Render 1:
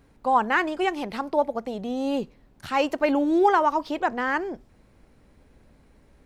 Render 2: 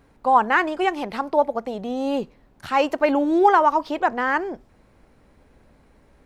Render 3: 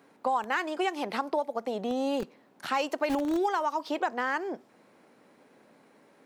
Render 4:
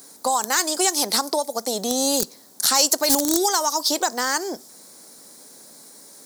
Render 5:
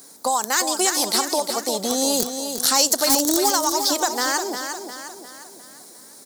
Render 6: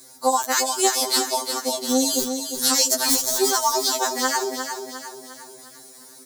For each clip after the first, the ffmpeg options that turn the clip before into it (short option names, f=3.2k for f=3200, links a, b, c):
-af "equalizer=f=950:t=o:w=2.5:g=4.5"
-filter_complex "[0:a]acrossover=split=180|3600[a][b][c];[a]acrusher=bits=5:mix=0:aa=0.000001[d];[b]acompressor=threshold=-26dB:ratio=6[e];[d][e][c]amix=inputs=3:normalize=0"
-af "aexciter=amount=14.2:drive=7:freq=4.2k,volume=5dB"
-af "aecho=1:1:354|708|1062|1416|1770:0.422|0.198|0.0932|0.0438|0.0206"
-af "afftfilt=real='re*2.45*eq(mod(b,6),0)':imag='im*2.45*eq(mod(b,6),0)':win_size=2048:overlap=0.75,volume=1.5dB"